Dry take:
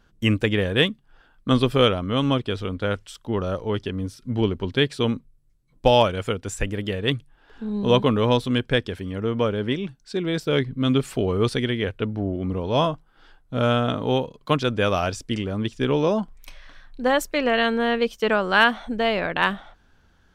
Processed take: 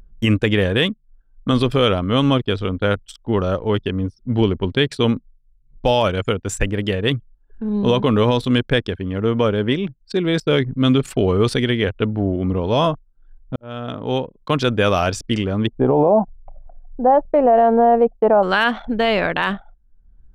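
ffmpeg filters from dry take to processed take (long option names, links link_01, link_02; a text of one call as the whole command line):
ffmpeg -i in.wav -filter_complex "[0:a]asettb=1/sr,asplit=3[link_01][link_02][link_03];[link_01]atrim=end=15.674[link_04];[link_02]atrim=start=15.67:end=18.43,asetpts=PTS-STARTPTS,afade=type=in:duration=0.004:curve=qsin,afade=type=out:start_time=2.756:duration=0.004:curve=qsin,lowpass=frequency=760:width_type=q:width=4.7[link_05];[link_03]atrim=start=18.426[link_06];[link_04][link_05]acrossfade=duration=0.004:curve1=hsin:curve2=qsin[link_07];[link_07][link_06]acrossfade=duration=0.004:curve1=qsin:curve2=hsin,asplit=2[link_08][link_09];[link_08]atrim=end=13.56,asetpts=PTS-STARTPTS,afade=type=out:start_time=13.556:duration=0.004:curve=hsin[link_10];[link_09]atrim=start=13.56,asetpts=PTS-STARTPTS,afade=type=in:duration=1.07[link_11];[link_10][link_11]concat=n=2:v=0:a=1,anlmdn=1,acompressor=mode=upward:threshold=-38dB:ratio=2.5,alimiter=level_in=11.5dB:limit=-1dB:release=50:level=0:latency=1,volume=-5.5dB" out.wav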